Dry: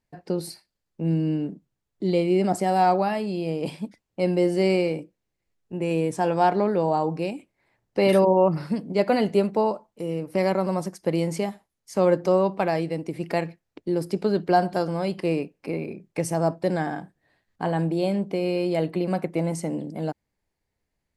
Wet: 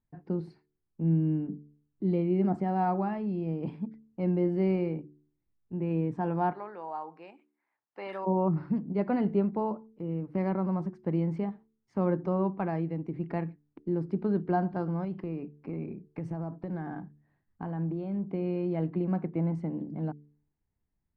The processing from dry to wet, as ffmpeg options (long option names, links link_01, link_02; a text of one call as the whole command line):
ffmpeg -i in.wav -filter_complex "[0:a]asplit=3[link_01][link_02][link_03];[link_01]afade=type=out:start_time=6.51:duration=0.02[link_04];[link_02]highpass=840,afade=type=in:start_time=6.51:duration=0.02,afade=type=out:start_time=8.25:duration=0.02[link_05];[link_03]afade=type=in:start_time=8.25:duration=0.02[link_06];[link_04][link_05][link_06]amix=inputs=3:normalize=0,asettb=1/sr,asplit=3[link_07][link_08][link_09];[link_07]atrim=end=15.044[link_10];[link_08]atrim=start=15.04:end=18.3,asetpts=PTS-STARTPTS,afade=type=in:duration=0.004:curve=qsin,afade=type=out:start_time=3.256:duration=0.004:curve=qsin,acompressor=threshold=-25dB:ratio=6:attack=3.2:release=140:knee=1:detection=peak[link_11];[link_09]atrim=start=18.296[link_12];[link_10][link_11]acrossfade=duration=0.004:curve1=hsin:curve2=qsin[link_13];[link_13][link_12]acrossfade=duration=0.004:curve1=qsin:curve2=hsin,lowpass=1000,equalizer=frequency=560:width_type=o:width=1.2:gain=-12.5,bandreject=frequency=73.62:width_type=h:width=4,bandreject=frequency=147.24:width_type=h:width=4,bandreject=frequency=220.86:width_type=h:width=4,bandreject=frequency=294.48:width_type=h:width=4,bandreject=frequency=368.1:width_type=h:width=4,bandreject=frequency=441.72:width_type=h:width=4" out.wav